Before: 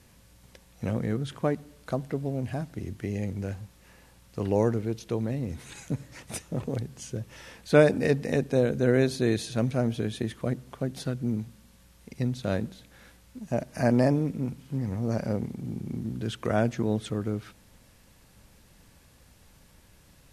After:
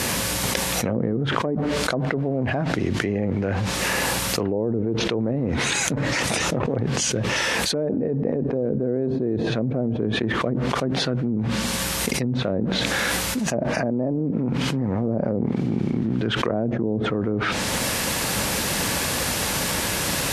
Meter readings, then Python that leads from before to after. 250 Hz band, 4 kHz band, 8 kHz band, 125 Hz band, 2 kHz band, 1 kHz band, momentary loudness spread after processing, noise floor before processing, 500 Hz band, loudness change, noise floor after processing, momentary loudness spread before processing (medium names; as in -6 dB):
+6.0 dB, +18.0 dB, +20.0 dB, +4.0 dB, +12.5 dB, +10.0 dB, 2 LU, -58 dBFS, +3.5 dB, +5.5 dB, -26 dBFS, 13 LU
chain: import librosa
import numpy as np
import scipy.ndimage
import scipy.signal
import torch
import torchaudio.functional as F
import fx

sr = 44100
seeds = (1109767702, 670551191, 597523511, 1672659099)

y = fx.env_lowpass_down(x, sr, base_hz=470.0, full_db=-23.0)
y = fx.highpass(y, sr, hz=340.0, slope=6)
y = fx.env_flatten(y, sr, amount_pct=100)
y = y * librosa.db_to_amplitude(-3.0)